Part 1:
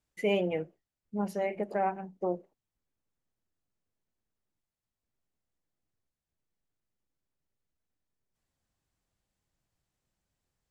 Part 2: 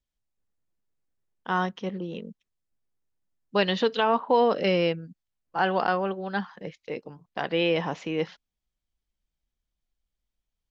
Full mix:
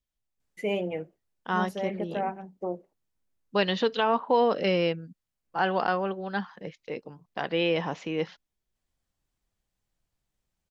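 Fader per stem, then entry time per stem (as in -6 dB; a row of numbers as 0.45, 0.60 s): -1.0, -1.5 dB; 0.40, 0.00 s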